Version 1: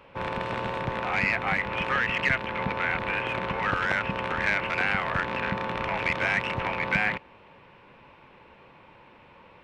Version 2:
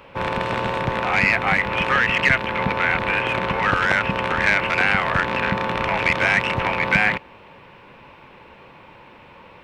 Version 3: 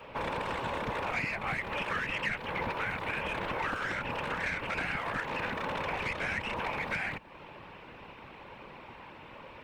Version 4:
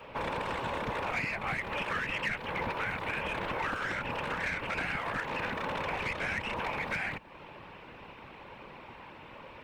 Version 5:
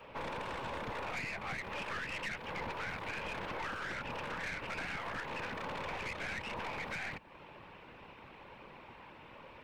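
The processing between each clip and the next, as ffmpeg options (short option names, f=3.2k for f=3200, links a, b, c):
-af "highshelf=f=6k:g=5,volume=7dB"
-filter_complex "[0:a]acrossover=split=81|240|7400[a][b][c][d];[a]acompressor=threshold=-45dB:ratio=4[e];[b]acompressor=threshold=-44dB:ratio=4[f];[c]acompressor=threshold=-30dB:ratio=4[g];[d]acompressor=threshold=-55dB:ratio=4[h];[e][f][g][h]amix=inputs=4:normalize=0,afftfilt=real='hypot(re,im)*cos(2*PI*random(0))':imag='hypot(re,im)*sin(2*PI*random(1))':win_size=512:overlap=0.75,volume=3dB"
-af "volume=24.5dB,asoftclip=hard,volume=-24.5dB"
-af "aeval=exprs='(tanh(35.5*val(0)+0.45)-tanh(0.45))/35.5':c=same,volume=-3dB"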